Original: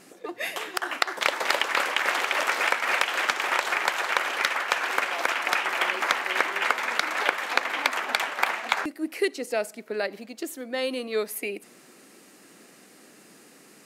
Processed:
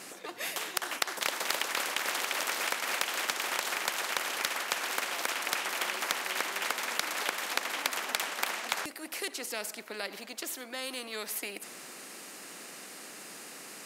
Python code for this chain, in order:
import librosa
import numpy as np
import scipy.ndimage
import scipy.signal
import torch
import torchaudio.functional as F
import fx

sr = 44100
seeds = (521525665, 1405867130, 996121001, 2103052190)

y = fx.highpass(x, sr, hz=360.0, slope=6)
y = fx.spectral_comp(y, sr, ratio=2.0)
y = y * librosa.db_to_amplitude(-6.0)